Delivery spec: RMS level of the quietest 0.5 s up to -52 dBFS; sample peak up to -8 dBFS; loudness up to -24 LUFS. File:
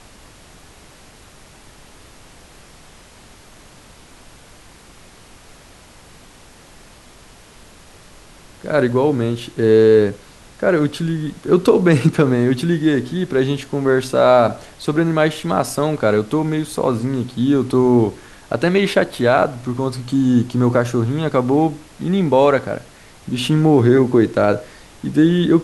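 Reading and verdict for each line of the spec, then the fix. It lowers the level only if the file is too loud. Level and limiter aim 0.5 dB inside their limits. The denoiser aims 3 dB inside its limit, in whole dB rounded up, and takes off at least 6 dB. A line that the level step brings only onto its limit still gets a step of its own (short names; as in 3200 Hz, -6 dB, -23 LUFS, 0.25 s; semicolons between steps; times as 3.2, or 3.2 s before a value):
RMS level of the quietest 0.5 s -44 dBFS: fail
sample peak -2.0 dBFS: fail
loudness -17.0 LUFS: fail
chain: denoiser 6 dB, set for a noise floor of -44 dBFS; gain -7.5 dB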